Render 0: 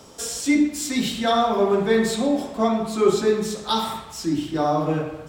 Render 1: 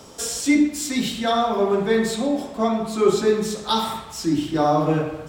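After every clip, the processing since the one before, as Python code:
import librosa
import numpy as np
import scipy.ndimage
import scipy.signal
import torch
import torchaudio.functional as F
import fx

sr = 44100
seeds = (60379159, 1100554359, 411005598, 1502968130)

y = fx.rider(x, sr, range_db=4, speed_s=2.0)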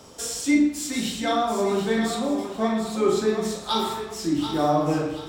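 y = fx.doubler(x, sr, ms=41.0, db=-6.5)
y = fx.echo_thinned(y, sr, ms=735, feedback_pct=33, hz=460.0, wet_db=-8)
y = y * 10.0 ** (-4.0 / 20.0)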